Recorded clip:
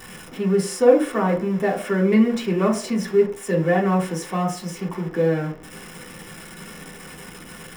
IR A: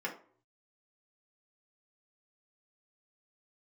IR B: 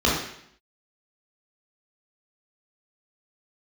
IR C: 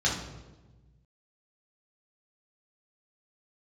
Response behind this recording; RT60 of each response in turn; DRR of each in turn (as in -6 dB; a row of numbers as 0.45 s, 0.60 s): A; 0.50 s, 0.70 s, 1.2 s; -3.0 dB, -6.0 dB, -5.0 dB